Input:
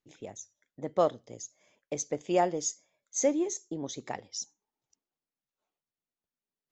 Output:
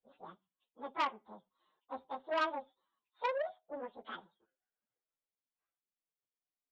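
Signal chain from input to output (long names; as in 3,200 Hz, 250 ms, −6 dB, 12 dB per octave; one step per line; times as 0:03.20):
phase-vocoder pitch shift without resampling +10 semitones
downsampling to 8,000 Hz
saturating transformer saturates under 1,800 Hz
level −3 dB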